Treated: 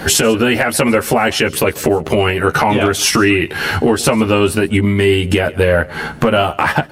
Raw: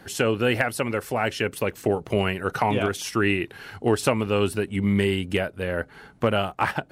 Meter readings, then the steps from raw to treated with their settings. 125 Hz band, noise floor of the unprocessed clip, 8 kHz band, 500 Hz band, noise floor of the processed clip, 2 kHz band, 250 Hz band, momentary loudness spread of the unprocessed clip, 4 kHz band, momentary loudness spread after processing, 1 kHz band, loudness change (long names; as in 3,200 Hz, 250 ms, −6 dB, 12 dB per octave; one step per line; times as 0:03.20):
+9.5 dB, −51 dBFS, +17.5 dB, +10.0 dB, −32 dBFS, +11.0 dB, +10.5 dB, 5 LU, +13.0 dB, 4 LU, +10.5 dB, +10.5 dB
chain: downward compressor 6 to 1, threshold −32 dBFS, peak gain reduction 15.5 dB
double-tracking delay 13 ms −2.5 dB
single-tap delay 141 ms −22.5 dB
boost into a limiter +22.5 dB
level −1 dB